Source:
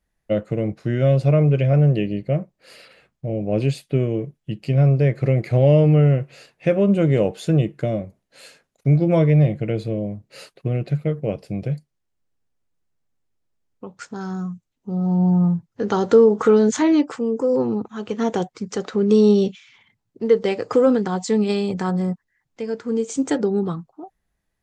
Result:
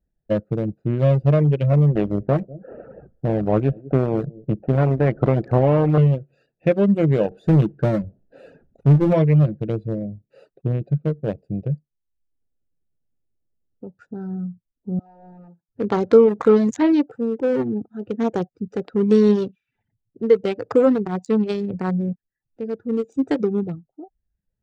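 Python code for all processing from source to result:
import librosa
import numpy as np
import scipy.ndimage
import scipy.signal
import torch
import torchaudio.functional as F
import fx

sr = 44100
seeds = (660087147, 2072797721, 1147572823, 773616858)

y = fx.chain(x, sr, fx.lowpass(hz=1300.0, slope=24),
    fx.echo_single(ms=196, db=-24.0),
    fx.spectral_comp(ratio=2.0), at=(1.95, 5.98))
y = fx.chain(y, sr, fx.high_shelf(hz=2600.0, db=-8.5),
    fx.power_curve(exponent=0.7), at=(7.31, 9.13))
y = fx.chain(y, sr, fx.highpass(hz=820.0, slope=12),
    fx.clip_hard(threshold_db=-34.0), at=(14.99, 15.69))
y = fx.wiener(y, sr, points=41)
y = fx.dereverb_blind(y, sr, rt60_s=0.61)
y = fx.high_shelf(y, sr, hz=4600.0, db=-5.0)
y = F.gain(torch.from_numpy(y), 1.5).numpy()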